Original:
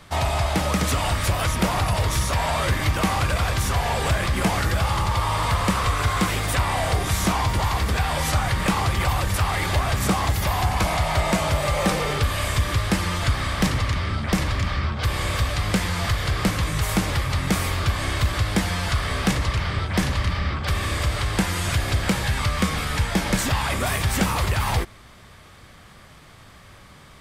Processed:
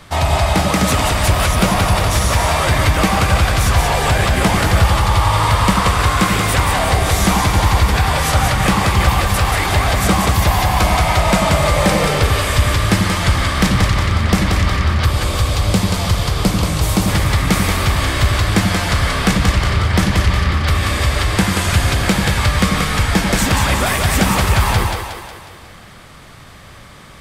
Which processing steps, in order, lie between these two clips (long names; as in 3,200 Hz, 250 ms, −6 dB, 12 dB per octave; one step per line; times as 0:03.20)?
0:15.06–0:17.08: parametric band 1,800 Hz −8 dB 1 octave
echo with a time of its own for lows and highs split 310 Hz, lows 86 ms, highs 182 ms, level −4 dB
level +6 dB